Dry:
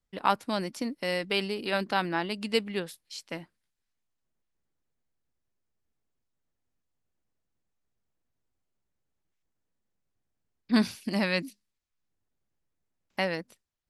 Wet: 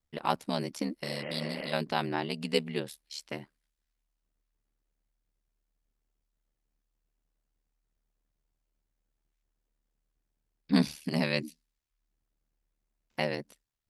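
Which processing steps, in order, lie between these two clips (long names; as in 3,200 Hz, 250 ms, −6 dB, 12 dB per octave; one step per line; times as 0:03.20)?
dynamic equaliser 1,400 Hz, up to −6 dB, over −44 dBFS, Q 1.5
healed spectral selection 0:01.06–0:01.70, 250–3,200 Hz before
ring modulation 37 Hz
level +2 dB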